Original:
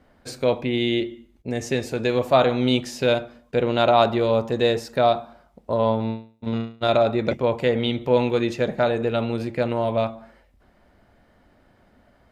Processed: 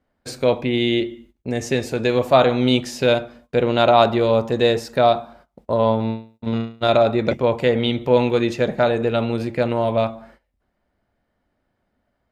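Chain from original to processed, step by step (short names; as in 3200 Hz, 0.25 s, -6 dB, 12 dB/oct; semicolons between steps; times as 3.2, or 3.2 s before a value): gate -50 dBFS, range -17 dB; gain +3 dB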